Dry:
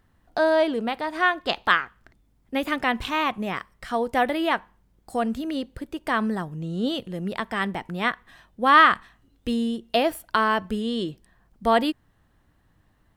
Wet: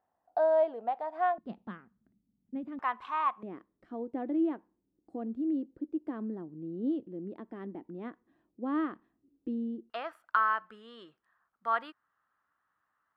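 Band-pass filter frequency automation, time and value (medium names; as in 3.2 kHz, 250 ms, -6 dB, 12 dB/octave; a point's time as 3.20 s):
band-pass filter, Q 4.7
730 Hz
from 1.38 s 210 Hz
from 2.79 s 1.1 kHz
from 3.43 s 310 Hz
from 9.90 s 1.3 kHz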